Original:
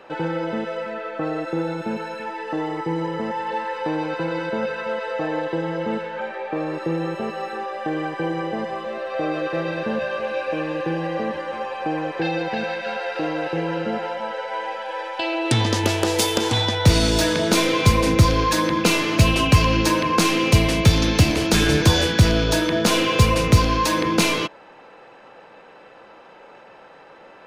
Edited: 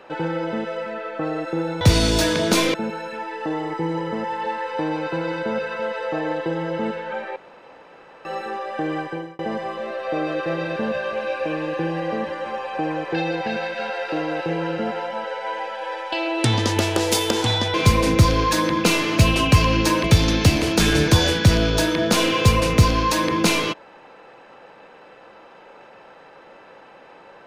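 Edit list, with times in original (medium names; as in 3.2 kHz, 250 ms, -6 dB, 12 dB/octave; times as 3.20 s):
6.43–7.32 s: room tone
8.07–8.46 s: fade out
16.81–17.74 s: move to 1.81 s
20.04–20.78 s: delete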